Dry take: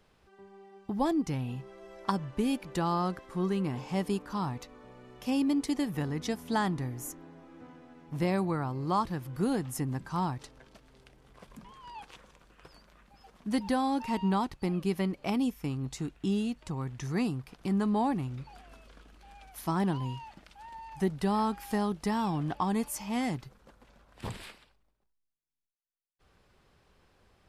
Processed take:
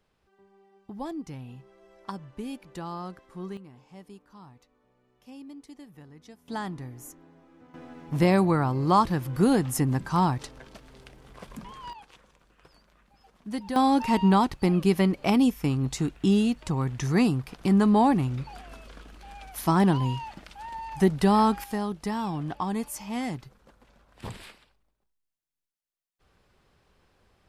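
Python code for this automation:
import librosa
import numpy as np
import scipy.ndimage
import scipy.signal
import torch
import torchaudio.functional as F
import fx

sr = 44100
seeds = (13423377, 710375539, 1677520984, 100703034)

y = fx.gain(x, sr, db=fx.steps((0.0, -7.0), (3.57, -16.5), (6.48, -4.5), (7.74, 8.0), (11.93, -3.0), (13.76, 8.0), (21.64, 0.0)))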